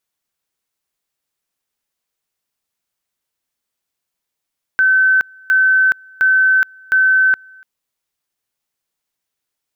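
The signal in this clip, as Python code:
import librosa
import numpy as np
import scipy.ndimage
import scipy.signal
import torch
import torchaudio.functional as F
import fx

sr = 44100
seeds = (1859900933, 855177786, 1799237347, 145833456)

y = fx.two_level_tone(sr, hz=1530.0, level_db=-9.0, drop_db=29.5, high_s=0.42, low_s=0.29, rounds=4)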